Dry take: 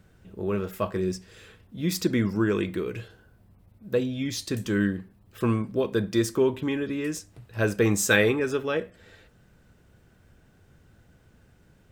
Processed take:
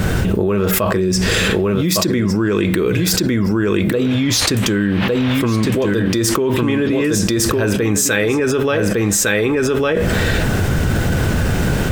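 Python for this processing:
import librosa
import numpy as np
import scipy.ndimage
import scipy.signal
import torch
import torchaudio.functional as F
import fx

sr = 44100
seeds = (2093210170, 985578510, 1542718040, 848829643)

y = fx.dmg_noise_band(x, sr, seeds[0], low_hz=390.0, high_hz=3200.0, level_db=-50.0, at=(4.03, 5.86), fade=0.02)
y = y + 10.0 ** (-7.0 / 20.0) * np.pad(y, (int(1156 * sr / 1000.0), 0))[:len(y)]
y = fx.env_flatten(y, sr, amount_pct=100)
y = y * 10.0 ** (1.5 / 20.0)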